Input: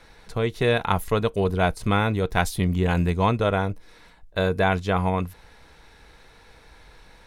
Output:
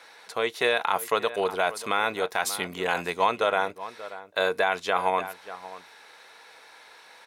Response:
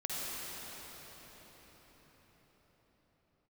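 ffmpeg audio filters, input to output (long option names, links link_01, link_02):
-filter_complex "[0:a]highpass=610,asplit=2[link_01][link_02];[link_02]adelay=583.1,volume=-16dB,highshelf=frequency=4000:gain=-13.1[link_03];[link_01][link_03]amix=inputs=2:normalize=0,alimiter=level_in=13dB:limit=-1dB:release=50:level=0:latency=1,volume=-9dB"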